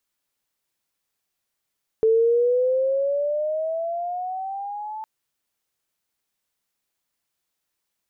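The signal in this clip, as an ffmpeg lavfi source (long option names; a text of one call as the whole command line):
ffmpeg -f lavfi -i "aevalsrc='pow(10,(-14-16*t/3.01)/20)*sin(2*PI*440*3.01/(12*log(2)/12)*(exp(12*log(2)/12*t/3.01)-1))':duration=3.01:sample_rate=44100" out.wav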